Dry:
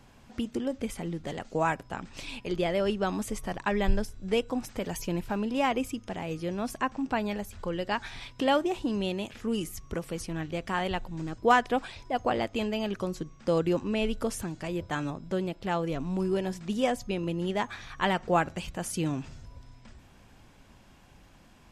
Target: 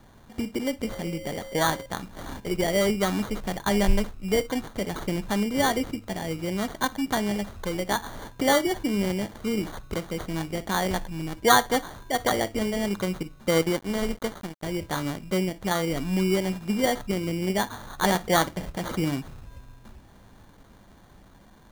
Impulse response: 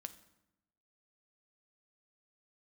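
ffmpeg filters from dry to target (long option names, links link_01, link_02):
-filter_complex "[0:a]asettb=1/sr,asplit=3[link_01][link_02][link_03];[link_01]atrim=end=0.874[link_04];[link_02]atrim=start=0.87:end=1.86,asetpts=PTS-STARTPTS,afade=type=in:duration=0.004:curve=qsin,afade=type=out:start_time=0.986:duration=0.004:curve=qsin,aeval=exprs='val(0)+0.00794*sin(2*PI*540*n/s)':channel_layout=same[link_05];[link_03]atrim=start=1.856[link_06];[link_04][link_05]acrossfade=duration=0.004:curve1=hsin:curve2=qsin[link_07];[link_07][link_06]acrossfade=duration=0.004:curve1=qsin:curve2=hsin,asplit=2[link_08][link_09];[1:a]atrim=start_sample=2205,atrim=end_sample=3087[link_10];[link_09][link_10]afir=irnorm=-1:irlink=0,volume=14dB[link_11];[link_08][link_11]amix=inputs=2:normalize=0,acrusher=samples=17:mix=1:aa=0.000001,asettb=1/sr,asplit=3[link_12][link_13][link_14];[link_12]atrim=end=13.624[link_15];[link_13]atrim=start=13.62:end=14.63,asetpts=PTS-STARTPTS,afade=type=in:duration=0.004:curve=qsin,afade=type=out:start_time=1.006:duration=0.004:curve=qsin,aeval=exprs='sgn(val(0))*max(abs(val(0))-0.0596,0)':channel_layout=same[link_16];[link_14]atrim=start=14.626[link_17];[link_15][link_16]acrossfade=duration=0.004:curve1=hsin:curve2=qsin[link_18];[link_18][link_17]acrossfade=duration=0.004:curve1=qsin:curve2=hsin,volume=-8.5dB"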